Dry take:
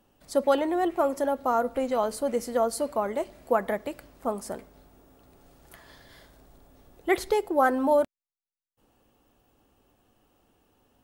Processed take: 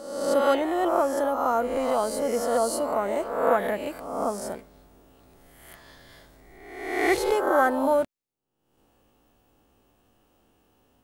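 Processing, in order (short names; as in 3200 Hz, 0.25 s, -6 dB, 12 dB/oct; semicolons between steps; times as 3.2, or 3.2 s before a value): spectral swells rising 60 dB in 0.99 s; gain -1 dB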